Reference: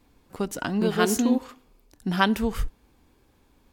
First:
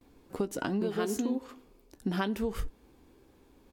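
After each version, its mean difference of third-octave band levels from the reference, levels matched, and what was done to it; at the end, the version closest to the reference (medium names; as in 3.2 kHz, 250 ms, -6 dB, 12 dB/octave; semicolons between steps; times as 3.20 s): 3.5 dB: peaking EQ 370 Hz +7.5 dB 1.3 oct; gate with hold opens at -53 dBFS; doubling 15 ms -13.5 dB; compression 6:1, threshold -26 dBFS, peak gain reduction 13 dB; trim -2 dB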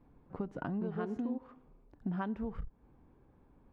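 8.5 dB: low-pass 1.2 kHz 12 dB/octave; peaking EQ 150 Hz +7.5 dB 0.52 oct; compression 5:1, threshold -32 dBFS, peak gain reduction 14.5 dB; transformer saturation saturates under 110 Hz; trim -2.5 dB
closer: first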